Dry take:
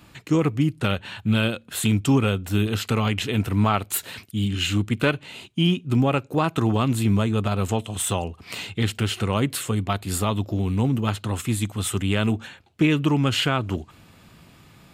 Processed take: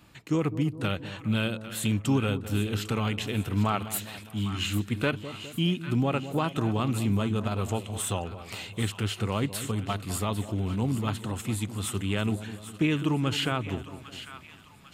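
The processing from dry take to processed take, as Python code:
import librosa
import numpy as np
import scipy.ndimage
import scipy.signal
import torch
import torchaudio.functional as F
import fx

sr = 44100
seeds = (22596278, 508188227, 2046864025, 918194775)

y = fx.echo_split(x, sr, split_hz=940.0, low_ms=205, high_ms=799, feedback_pct=52, wet_db=-12.0)
y = y * 10.0 ** (-6.0 / 20.0)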